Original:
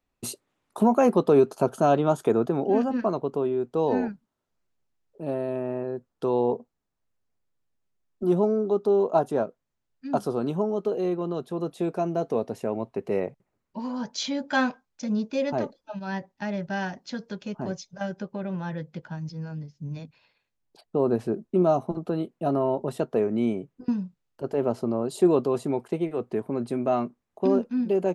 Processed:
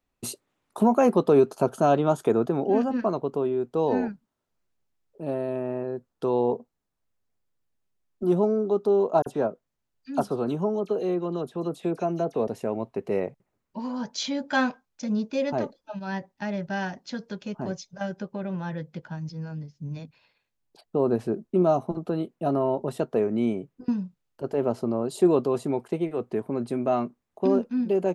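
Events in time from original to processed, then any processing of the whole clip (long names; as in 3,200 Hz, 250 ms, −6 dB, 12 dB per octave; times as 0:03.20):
0:09.22–0:12.48: all-pass dispersion lows, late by 44 ms, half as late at 3,000 Hz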